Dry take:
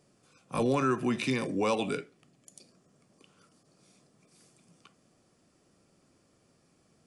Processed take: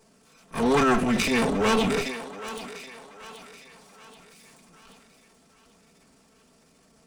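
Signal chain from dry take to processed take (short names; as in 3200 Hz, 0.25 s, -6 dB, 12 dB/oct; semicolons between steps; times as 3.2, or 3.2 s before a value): minimum comb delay 4.5 ms; thinning echo 0.78 s, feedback 50%, high-pass 460 Hz, level -12 dB; transient shaper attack -9 dB, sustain +7 dB; gain +8.5 dB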